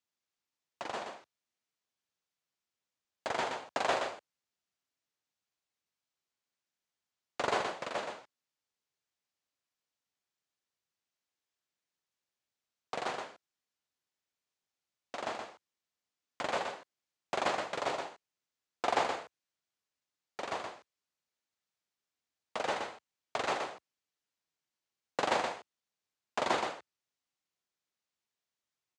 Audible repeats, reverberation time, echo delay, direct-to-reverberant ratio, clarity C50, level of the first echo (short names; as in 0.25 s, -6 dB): 1, none, 0.122 s, none, none, -5.5 dB